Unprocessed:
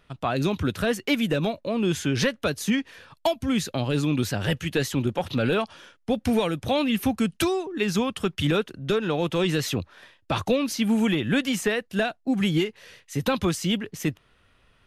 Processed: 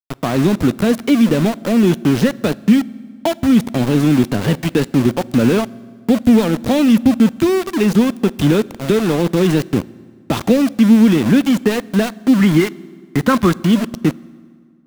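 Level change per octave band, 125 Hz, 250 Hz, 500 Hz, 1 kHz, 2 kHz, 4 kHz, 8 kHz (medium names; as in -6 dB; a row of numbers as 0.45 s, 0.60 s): +9.5 dB, +12.5 dB, +8.0 dB, +6.5 dB, +4.5 dB, +2.5 dB, +4.0 dB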